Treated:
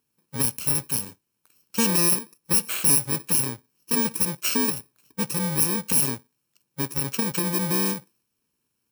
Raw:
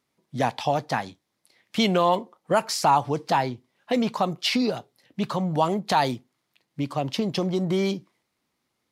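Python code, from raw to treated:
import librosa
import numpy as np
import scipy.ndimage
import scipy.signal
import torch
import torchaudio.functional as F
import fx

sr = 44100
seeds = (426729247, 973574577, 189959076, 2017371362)

y = fx.bit_reversed(x, sr, seeds[0], block=64)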